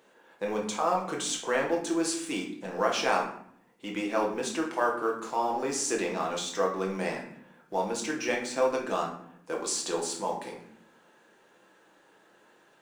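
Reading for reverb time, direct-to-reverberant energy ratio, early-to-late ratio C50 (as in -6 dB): 0.65 s, -1.5 dB, 7.0 dB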